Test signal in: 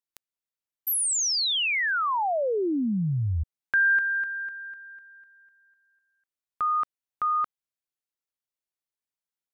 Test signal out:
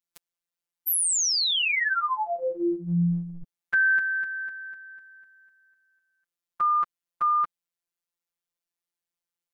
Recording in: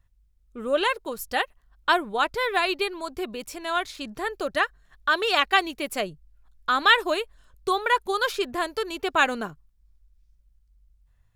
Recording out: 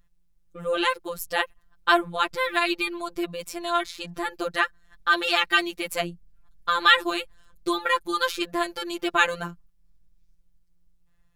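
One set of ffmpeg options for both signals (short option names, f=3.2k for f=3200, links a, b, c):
-af "afftfilt=real='hypot(re,im)*cos(PI*b)':imag='0':win_size=1024:overlap=0.75,adynamicequalizer=threshold=0.01:dfrequency=690:dqfactor=1.1:tfrequency=690:tqfactor=1.1:attack=5:release=100:ratio=0.417:range=3:mode=cutabove:tftype=bell,volume=4.5dB"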